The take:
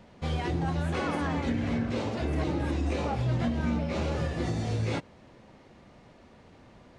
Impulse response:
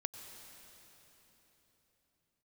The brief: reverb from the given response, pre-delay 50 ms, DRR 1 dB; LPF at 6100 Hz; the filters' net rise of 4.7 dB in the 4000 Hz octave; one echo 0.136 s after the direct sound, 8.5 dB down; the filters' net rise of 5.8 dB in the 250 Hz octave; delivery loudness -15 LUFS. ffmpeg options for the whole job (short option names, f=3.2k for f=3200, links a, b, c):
-filter_complex "[0:a]lowpass=6.1k,equalizer=f=250:t=o:g=7,equalizer=f=4k:t=o:g=6.5,aecho=1:1:136:0.376,asplit=2[a][b];[1:a]atrim=start_sample=2205,adelay=50[c];[b][c]afir=irnorm=-1:irlink=0,volume=0dB[d];[a][d]amix=inputs=2:normalize=0,volume=9dB"